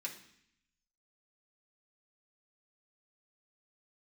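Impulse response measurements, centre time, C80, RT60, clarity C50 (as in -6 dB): 16 ms, 13.0 dB, 0.65 s, 9.5 dB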